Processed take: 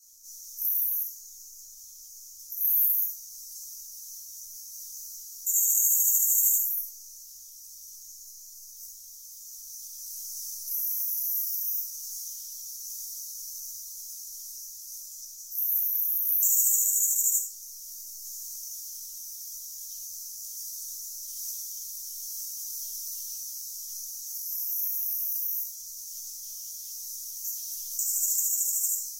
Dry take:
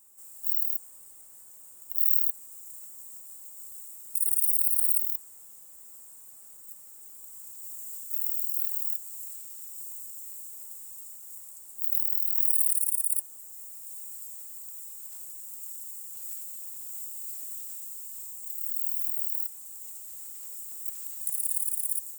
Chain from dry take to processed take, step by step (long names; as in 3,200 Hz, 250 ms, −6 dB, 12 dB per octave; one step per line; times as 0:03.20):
drawn EQ curve 120 Hz 0 dB, 180 Hz −28 dB, 7,800 Hz +8 dB, 15,000 Hz 0 dB
rectangular room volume 360 cubic metres, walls furnished, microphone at 6.6 metres
gate on every frequency bin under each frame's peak −30 dB strong
speed change −24%
level −8.5 dB